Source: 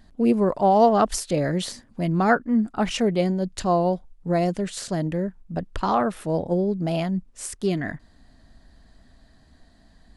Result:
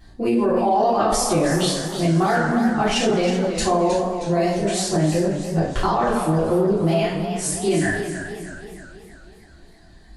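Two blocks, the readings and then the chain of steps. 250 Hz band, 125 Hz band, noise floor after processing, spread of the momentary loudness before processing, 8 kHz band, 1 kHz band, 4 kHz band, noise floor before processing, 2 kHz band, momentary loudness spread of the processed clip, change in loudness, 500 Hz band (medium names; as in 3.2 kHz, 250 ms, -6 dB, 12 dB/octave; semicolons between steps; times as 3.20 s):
+2.5 dB, +4.0 dB, -47 dBFS, 11 LU, +8.0 dB, +2.5 dB, +7.5 dB, -56 dBFS, +5.5 dB, 5 LU, +3.0 dB, +3.5 dB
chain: reverb removal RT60 1.8 s; two-slope reverb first 0.49 s, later 2 s, from -16 dB, DRR -9 dB; peak limiter -11.5 dBFS, peak gain reduction 13 dB; modulated delay 317 ms, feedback 53%, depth 109 cents, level -9.5 dB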